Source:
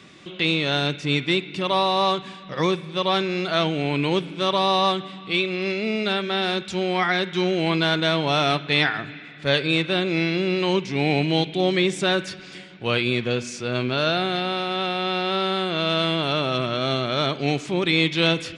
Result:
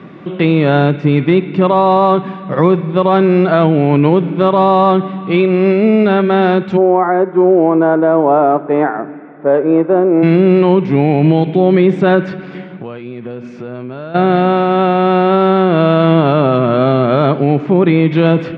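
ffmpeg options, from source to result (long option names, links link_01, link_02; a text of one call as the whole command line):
ffmpeg -i in.wav -filter_complex "[0:a]asplit=3[link_01][link_02][link_03];[link_01]afade=type=out:start_time=6.76:duration=0.02[link_04];[link_02]asuperpass=centerf=570:order=4:qfactor=0.69,afade=type=in:start_time=6.76:duration=0.02,afade=type=out:start_time=10.22:duration=0.02[link_05];[link_03]afade=type=in:start_time=10.22:duration=0.02[link_06];[link_04][link_05][link_06]amix=inputs=3:normalize=0,asplit=3[link_07][link_08][link_09];[link_07]afade=type=out:start_time=12.74:duration=0.02[link_10];[link_08]acompressor=threshold=-37dB:ratio=8:attack=3.2:release=140:knee=1:detection=peak,afade=type=in:start_time=12.74:duration=0.02,afade=type=out:start_time=14.14:duration=0.02[link_11];[link_09]afade=type=in:start_time=14.14:duration=0.02[link_12];[link_10][link_11][link_12]amix=inputs=3:normalize=0,asettb=1/sr,asplit=3[link_13][link_14][link_15];[link_13]atrim=end=17.394[link_16];[link_14]atrim=start=17.39:end=18.11,asetpts=PTS-STARTPTS,afade=type=in:duration=0.004:curve=qsin,afade=type=out:start_time=0.716:duration=0.004:curve=qsin,lowpass=frequency=3200:poles=1[link_17];[link_15]atrim=start=18.106[link_18];[link_16][link_17]acrossfade=duration=0.004:curve1=hsin:curve2=qsin[link_19];[link_19][link_18]acrossfade=duration=0.004:curve1=qsin:curve2=hsin,lowpass=1200,lowshelf=frequency=110:width_type=q:width=1.5:gain=-8.5,alimiter=level_in=16dB:limit=-1dB:release=50:level=0:latency=1,volume=-1dB" out.wav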